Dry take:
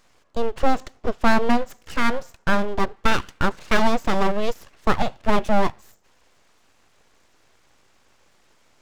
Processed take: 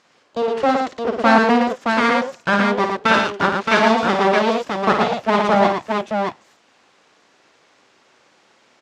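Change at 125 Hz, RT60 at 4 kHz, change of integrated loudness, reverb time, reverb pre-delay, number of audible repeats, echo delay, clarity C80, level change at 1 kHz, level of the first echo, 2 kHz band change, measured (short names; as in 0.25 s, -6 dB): +2.5 dB, none, +6.0 dB, none, none, 3, 54 ms, none, +7.0 dB, -6.5 dB, +7.0 dB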